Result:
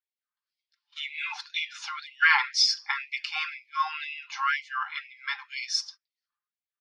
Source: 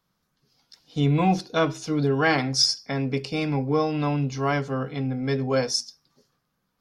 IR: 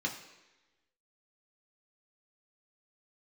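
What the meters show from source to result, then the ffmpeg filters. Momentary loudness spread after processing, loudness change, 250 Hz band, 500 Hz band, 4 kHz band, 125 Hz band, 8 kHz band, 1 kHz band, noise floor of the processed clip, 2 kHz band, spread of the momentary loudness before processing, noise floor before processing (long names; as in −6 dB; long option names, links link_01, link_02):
15 LU, −3.5 dB, below −40 dB, below −40 dB, −0.5 dB, below −40 dB, −4.5 dB, −2.5 dB, below −85 dBFS, +4.5 dB, 7 LU, −76 dBFS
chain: -filter_complex "[0:a]lowpass=3000,agate=range=-25dB:threshold=-53dB:ratio=16:detection=peak,aecho=1:1:5.8:0.44,asplit=2[link_01][link_02];[link_02]acompressor=threshold=-27dB:ratio=6,volume=0dB[link_03];[link_01][link_03]amix=inputs=2:normalize=0,afftfilt=real='re*gte(b*sr/1024,770*pow(2000/770,0.5+0.5*sin(2*PI*2*pts/sr)))':imag='im*gte(b*sr/1024,770*pow(2000/770,0.5+0.5*sin(2*PI*2*pts/sr)))':win_size=1024:overlap=0.75,volume=3dB"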